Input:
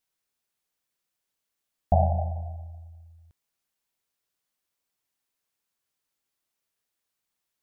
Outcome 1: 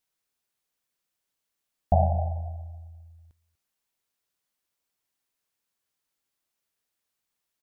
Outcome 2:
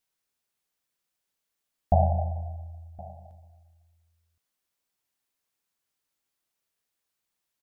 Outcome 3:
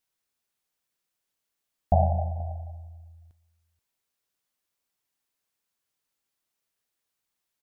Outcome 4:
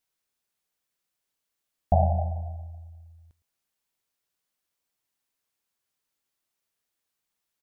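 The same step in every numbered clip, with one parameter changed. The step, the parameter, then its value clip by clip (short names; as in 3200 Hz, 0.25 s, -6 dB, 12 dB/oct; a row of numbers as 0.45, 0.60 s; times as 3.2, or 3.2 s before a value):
echo, time: 0.243, 1.068, 0.48, 0.11 s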